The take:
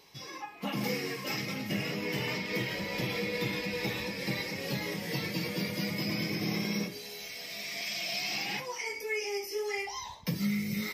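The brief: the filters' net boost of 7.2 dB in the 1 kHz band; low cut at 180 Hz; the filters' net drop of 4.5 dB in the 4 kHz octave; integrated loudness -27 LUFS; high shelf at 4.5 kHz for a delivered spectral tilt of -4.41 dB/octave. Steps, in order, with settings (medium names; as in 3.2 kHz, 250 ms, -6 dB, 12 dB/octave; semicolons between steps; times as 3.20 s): high-pass 180 Hz; peaking EQ 1 kHz +9 dB; peaking EQ 4 kHz -4.5 dB; treble shelf 4.5 kHz -3.5 dB; trim +7 dB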